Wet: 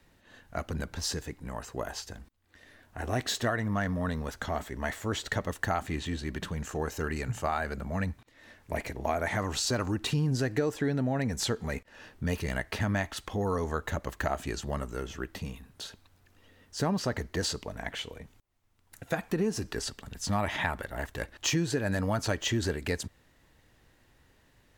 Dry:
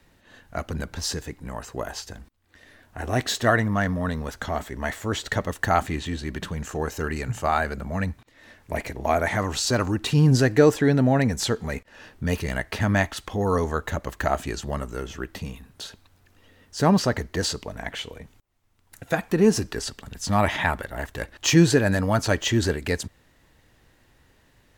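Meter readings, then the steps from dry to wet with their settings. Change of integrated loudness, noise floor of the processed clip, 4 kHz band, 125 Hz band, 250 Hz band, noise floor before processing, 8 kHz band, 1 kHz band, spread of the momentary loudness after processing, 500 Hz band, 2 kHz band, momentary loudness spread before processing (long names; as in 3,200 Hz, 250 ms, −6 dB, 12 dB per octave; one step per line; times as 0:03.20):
−8.0 dB, −64 dBFS, −5.5 dB, −8.0 dB, −8.5 dB, −60 dBFS, −5.5 dB, −8.0 dB, 11 LU, −8.5 dB, −7.0 dB, 16 LU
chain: downward compressor 6 to 1, threshold −21 dBFS, peak gain reduction 10.5 dB
level −4 dB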